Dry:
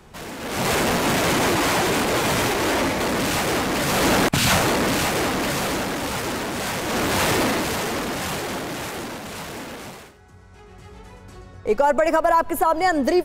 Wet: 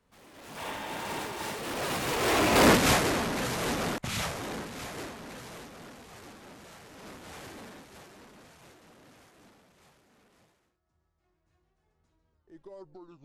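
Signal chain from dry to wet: tape stop at the end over 1.72 s; Doppler pass-by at 2.69, 52 m/s, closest 7.1 m; spectral repair 0.6–1.5, 510–3800 Hz after; noise-modulated level, depth 65%; gain +7.5 dB

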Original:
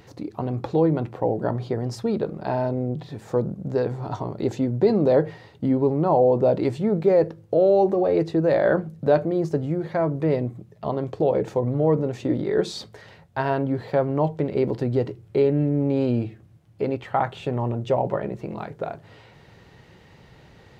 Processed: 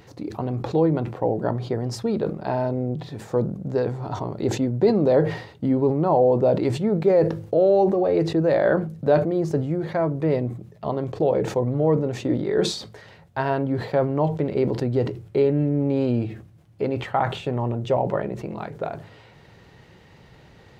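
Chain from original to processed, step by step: sustainer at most 96 dB/s

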